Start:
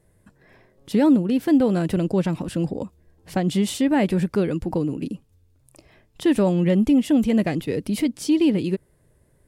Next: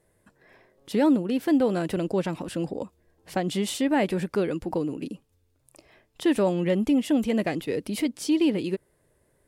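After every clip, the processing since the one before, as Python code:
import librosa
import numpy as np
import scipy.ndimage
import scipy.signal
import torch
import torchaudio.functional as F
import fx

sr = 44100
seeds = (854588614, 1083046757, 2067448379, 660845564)

y = fx.bass_treble(x, sr, bass_db=-9, treble_db=-1)
y = y * 10.0 ** (-1.0 / 20.0)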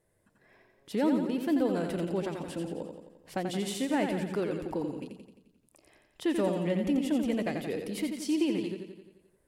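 y = fx.echo_feedback(x, sr, ms=87, feedback_pct=57, wet_db=-6.0)
y = fx.end_taper(y, sr, db_per_s=190.0)
y = y * 10.0 ** (-6.5 / 20.0)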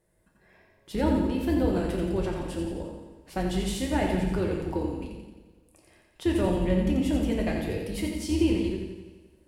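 y = fx.octave_divider(x, sr, octaves=2, level_db=-2.0)
y = fx.rev_double_slope(y, sr, seeds[0], early_s=0.66, late_s=2.0, knee_db=-16, drr_db=1.0)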